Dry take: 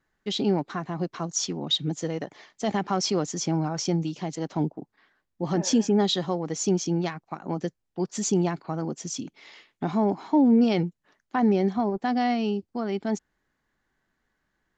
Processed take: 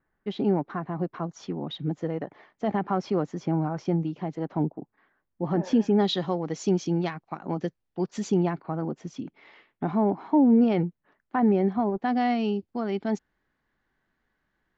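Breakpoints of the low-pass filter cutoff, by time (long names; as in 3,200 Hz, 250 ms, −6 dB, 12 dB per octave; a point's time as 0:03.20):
0:05.62 1,700 Hz
0:06.04 3,800 Hz
0:08.13 3,800 Hz
0:08.64 2,000 Hz
0:11.66 2,000 Hz
0:12.41 4,100 Hz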